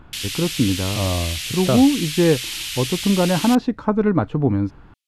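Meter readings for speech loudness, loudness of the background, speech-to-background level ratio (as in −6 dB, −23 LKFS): −20.0 LKFS, −26.0 LKFS, 6.0 dB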